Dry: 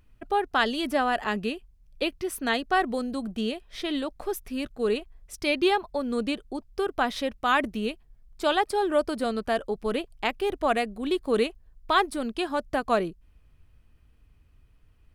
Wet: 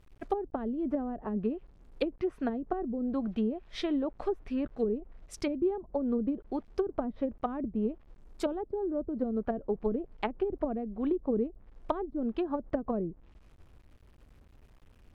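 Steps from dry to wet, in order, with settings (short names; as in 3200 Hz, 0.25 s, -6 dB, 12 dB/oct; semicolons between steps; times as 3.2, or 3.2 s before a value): requantised 10-bit, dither none; treble ducked by the level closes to 300 Hz, closed at -23 dBFS; mismatched tape noise reduction decoder only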